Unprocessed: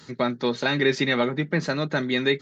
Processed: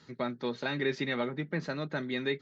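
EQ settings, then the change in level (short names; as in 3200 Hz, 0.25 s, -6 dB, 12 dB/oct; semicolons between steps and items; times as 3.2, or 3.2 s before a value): air absorption 86 m; -9.0 dB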